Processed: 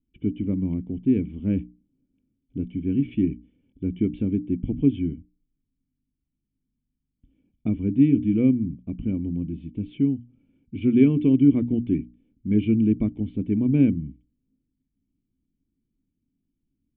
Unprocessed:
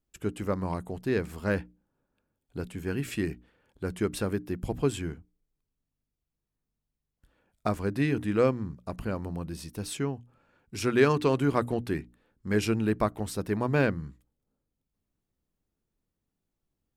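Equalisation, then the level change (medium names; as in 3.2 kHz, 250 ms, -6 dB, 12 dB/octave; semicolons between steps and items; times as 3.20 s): cascade formant filter i; bass shelf 340 Hz +10 dB; +7.5 dB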